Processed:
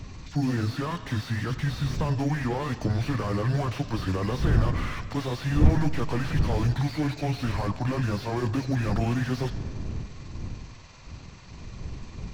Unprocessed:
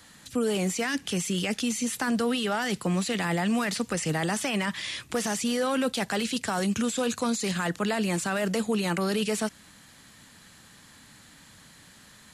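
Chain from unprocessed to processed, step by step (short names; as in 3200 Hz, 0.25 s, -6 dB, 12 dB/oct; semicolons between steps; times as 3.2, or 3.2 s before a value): delay-line pitch shifter -9 st; wind noise 120 Hz -33 dBFS; on a send at -16 dB: reverb RT60 1.9 s, pre-delay 45 ms; on the sum: slew limiter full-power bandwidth 27 Hz; gain +2 dB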